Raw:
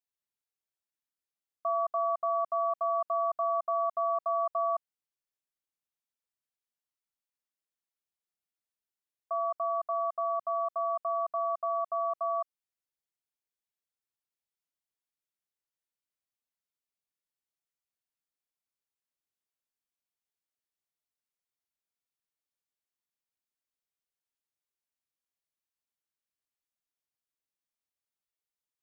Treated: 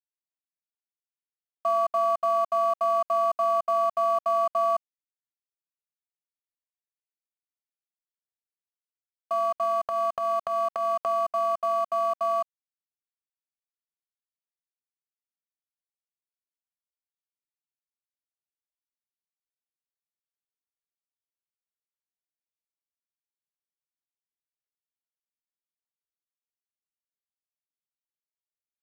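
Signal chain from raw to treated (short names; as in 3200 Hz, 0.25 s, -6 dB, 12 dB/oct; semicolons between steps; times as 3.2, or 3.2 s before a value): crossover distortion -50.5 dBFS; 9.63–11.06 transient shaper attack -8 dB, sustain +9 dB; gain +6 dB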